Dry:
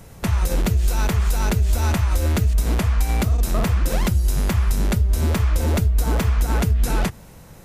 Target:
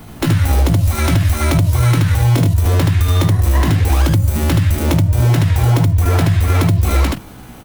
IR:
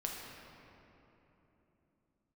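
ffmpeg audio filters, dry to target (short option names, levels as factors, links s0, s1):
-af "asetrate=68011,aresample=44100,atempo=0.64842,aecho=1:1:18|76:0.316|0.708,acompressor=threshold=0.178:ratio=6,volume=2"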